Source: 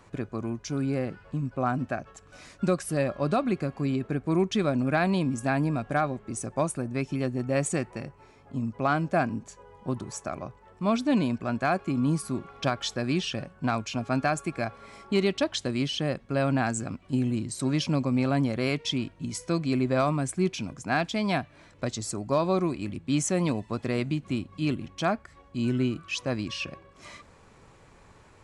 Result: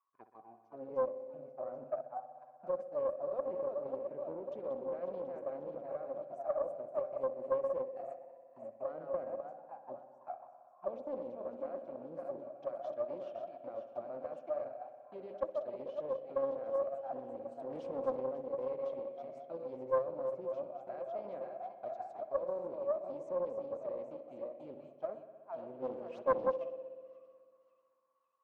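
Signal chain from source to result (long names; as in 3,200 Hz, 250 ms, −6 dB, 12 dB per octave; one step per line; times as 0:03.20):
feedback delay that plays each chunk backwards 272 ms, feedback 71%, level −7 dB
noise gate −30 dBFS, range −21 dB
low-shelf EQ 110 Hz −4.5 dB
0:17.70–0:18.21: leveller curve on the samples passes 3
brickwall limiter −20 dBFS, peak gain reduction 8 dB
0:25.82–0:26.56: leveller curve on the samples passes 3
envelope filter 520–1,100 Hz, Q 21, down, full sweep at −25 dBFS
delay with a low-pass on its return 62 ms, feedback 81%, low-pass 2,900 Hz, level −12.5 dB
highs frequency-modulated by the lows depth 0.36 ms
level +5.5 dB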